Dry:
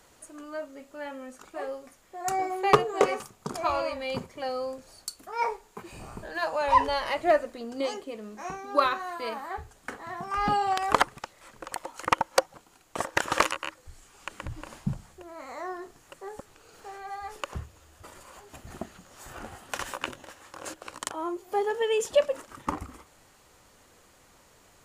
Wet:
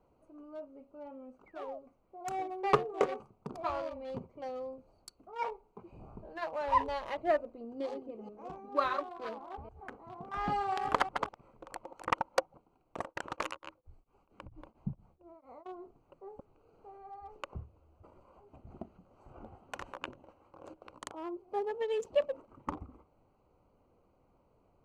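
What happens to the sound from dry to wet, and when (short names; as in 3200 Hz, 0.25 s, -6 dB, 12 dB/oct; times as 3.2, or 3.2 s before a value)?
1.46–1.79 painted sound fall 580–2300 Hz -37 dBFS
7.69–12.35 reverse delay 0.2 s, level -5.5 dB
13.03–15.66 beating tremolo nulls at 4.4 Hz
whole clip: Wiener smoothing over 25 samples; LPF 3400 Hz 6 dB/oct; gain -6.5 dB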